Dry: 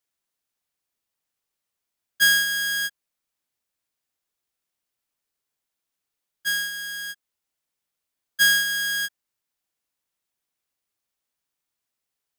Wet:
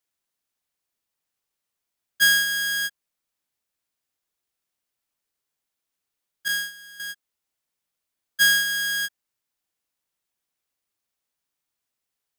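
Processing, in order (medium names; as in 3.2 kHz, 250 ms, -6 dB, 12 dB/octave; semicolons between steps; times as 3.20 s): 6.48–7.00 s: expander -24 dBFS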